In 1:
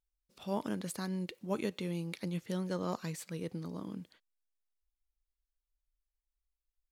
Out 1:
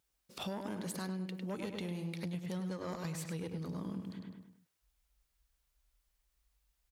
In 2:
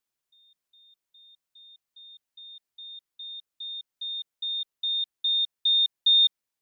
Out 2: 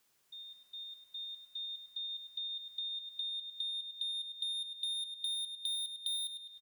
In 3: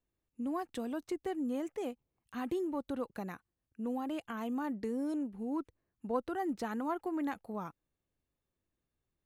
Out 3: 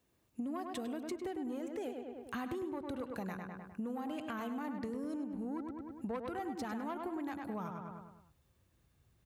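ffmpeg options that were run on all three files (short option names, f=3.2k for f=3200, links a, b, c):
-filter_complex "[0:a]asoftclip=type=tanh:threshold=-29.5dB,highpass=87,asplit=2[a][b];[b]adelay=102,lowpass=f=3.2k:p=1,volume=-6dB,asplit=2[c][d];[d]adelay=102,lowpass=f=3.2k:p=1,volume=0.48,asplit=2[e][f];[f]adelay=102,lowpass=f=3.2k:p=1,volume=0.48,asplit=2[g][h];[h]adelay=102,lowpass=f=3.2k:p=1,volume=0.48,asplit=2[i][j];[j]adelay=102,lowpass=f=3.2k:p=1,volume=0.48,asplit=2[k][l];[l]adelay=102,lowpass=f=3.2k:p=1,volume=0.48[m];[a][c][e][g][i][k][m]amix=inputs=7:normalize=0,asubboost=boost=4.5:cutoff=120,acompressor=threshold=-51dB:ratio=6,volume=12.5dB"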